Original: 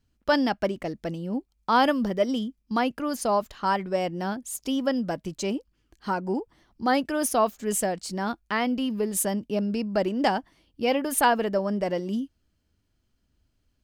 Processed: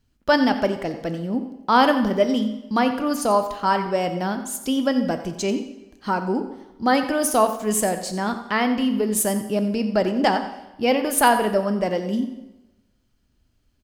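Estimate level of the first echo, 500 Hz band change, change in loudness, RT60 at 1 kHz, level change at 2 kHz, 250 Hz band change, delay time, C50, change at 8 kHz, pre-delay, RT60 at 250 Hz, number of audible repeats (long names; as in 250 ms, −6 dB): −13.5 dB, +4.5 dB, +4.5 dB, 1.1 s, +5.0 dB, +5.0 dB, 89 ms, 9.0 dB, +4.5 dB, 4 ms, 0.95 s, 1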